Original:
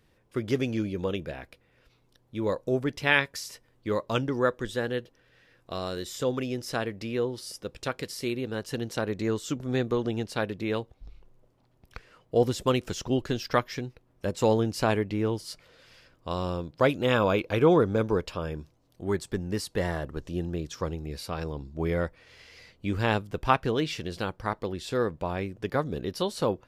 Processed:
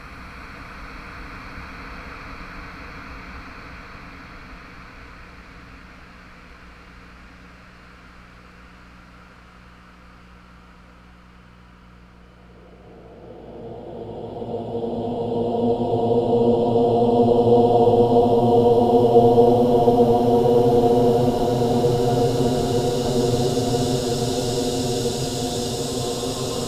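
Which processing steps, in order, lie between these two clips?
AM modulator 230 Hz, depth 75%; Paulstretch 39×, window 0.25 s, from 11.92 s; hum 60 Hz, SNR 26 dB; on a send: echo that smears into a reverb 1539 ms, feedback 72%, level -8 dB; on the sum: trim +9 dB

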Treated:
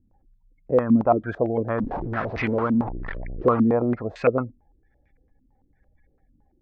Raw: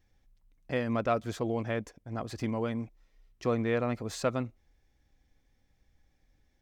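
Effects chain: 1.78–3.62 s: one-bit delta coder 32 kbps, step -30 dBFS; spectral gate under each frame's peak -30 dB strong; step-sequenced low-pass 8.9 Hz 250–2200 Hz; trim +5 dB

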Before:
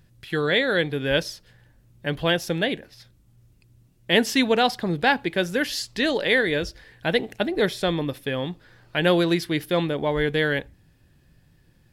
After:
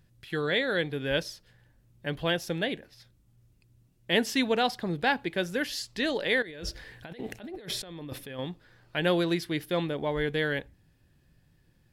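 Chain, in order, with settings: 6.42–8.39 s: compressor with a negative ratio -34 dBFS, ratio -1; trim -6 dB

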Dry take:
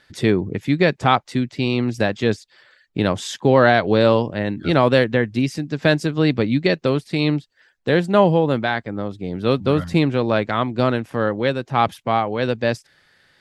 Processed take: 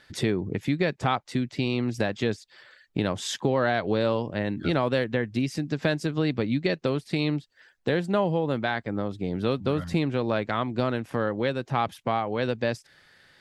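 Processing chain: compression 2.5:1, threshold -25 dBFS, peak gain reduction 11 dB

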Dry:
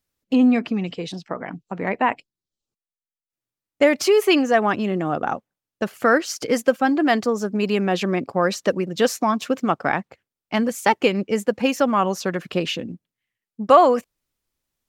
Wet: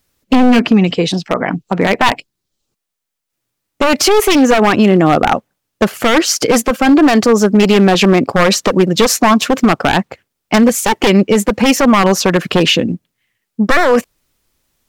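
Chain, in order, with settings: one-sided wavefolder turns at -16 dBFS; loudness maximiser +16.5 dB; trim -1 dB

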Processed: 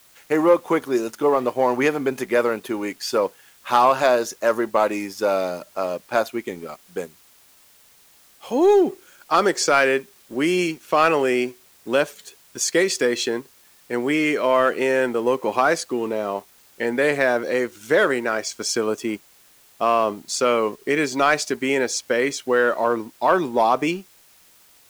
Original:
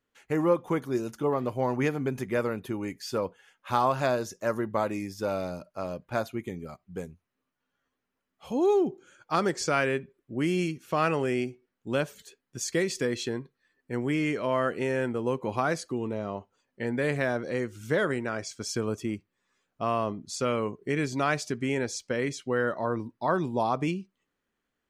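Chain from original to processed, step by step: high-pass 330 Hz 12 dB/octave; waveshaping leveller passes 1; in parallel at -9.5 dB: word length cut 8-bit, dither triangular; on the sum: trim +4 dB

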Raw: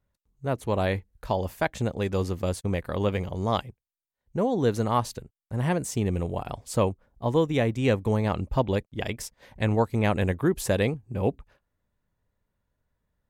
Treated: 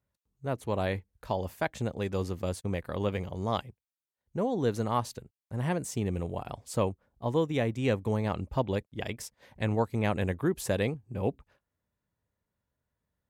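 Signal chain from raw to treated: high-pass 61 Hz; trim -4.5 dB

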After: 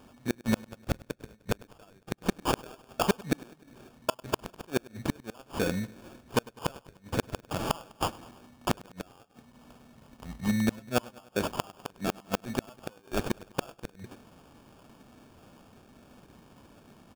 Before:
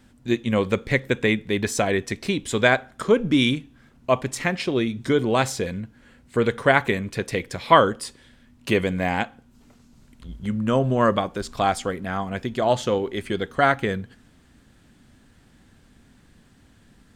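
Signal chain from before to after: high-pass 290 Hz 6 dB/octave; peaking EQ 390 Hz -7.5 dB 1.1 oct; sample-rate reducer 2 kHz, jitter 0%; inverted gate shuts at -20 dBFS, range -36 dB; feedback delay 101 ms, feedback 60%, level -22 dB; trim +6 dB

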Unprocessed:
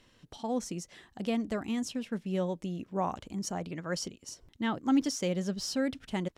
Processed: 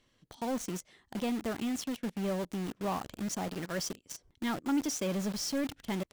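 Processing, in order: speed mistake 24 fps film run at 25 fps; in parallel at -4 dB: companded quantiser 2-bit; on the sum: trim -7.5 dB

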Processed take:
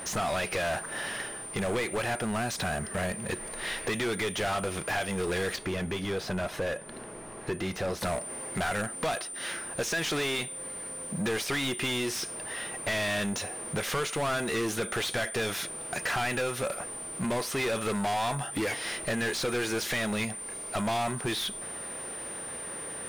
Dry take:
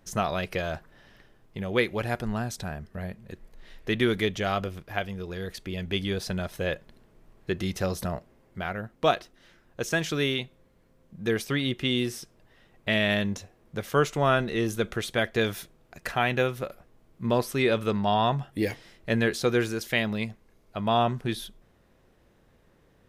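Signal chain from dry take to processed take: compression 8:1, threshold -38 dBFS, peak gain reduction 20.5 dB; whistle 9.1 kHz -57 dBFS; overdrive pedal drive 34 dB, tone 3.4 kHz, clips at -21 dBFS, from 5.56 s tone 1.3 kHz, from 8.01 s tone 4.3 kHz

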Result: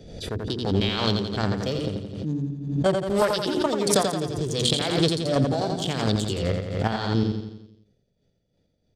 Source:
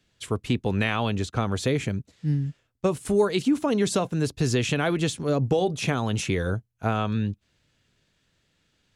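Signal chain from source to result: local Wiener filter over 41 samples; high-order bell 4.2 kHz +9 dB; hum notches 60/120/180/240/300/360 Hz; formant shift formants +4 st; in parallel at -1 dB: peak limiter -16 dBFS, peak gain reduction 8 dB; on the sum: square tremolo 2.8 Hz, depth 60%, duty 25%; on a send: feedback delay 86 ms, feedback 53%, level -5 dB; on the sum: swell ahead of each attack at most 59 dB/s; trim -1 dB

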